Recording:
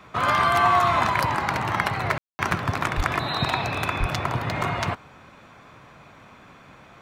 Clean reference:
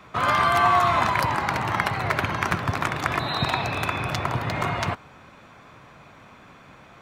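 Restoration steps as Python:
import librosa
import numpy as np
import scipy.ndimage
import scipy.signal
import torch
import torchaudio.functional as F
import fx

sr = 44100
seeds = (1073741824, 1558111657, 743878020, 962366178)

y = fx.fix_deplosive(x, sr, at_s=(2.96, 3.99))
y = fx.fix_ambience(y, sr, seeds[0], print_start_s=5.22, print_end_s=5.72, start_s=2.18, end_s=2.39)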